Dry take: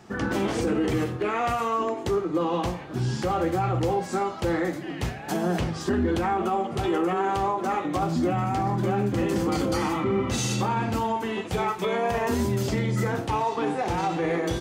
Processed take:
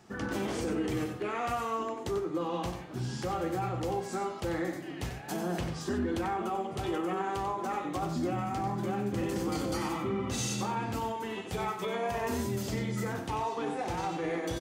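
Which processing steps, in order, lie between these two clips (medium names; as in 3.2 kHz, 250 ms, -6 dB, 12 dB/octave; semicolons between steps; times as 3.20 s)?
treble shelf 5.2 kHz +5 dB; delay 93 ms -8.5 dB; trim -8 dB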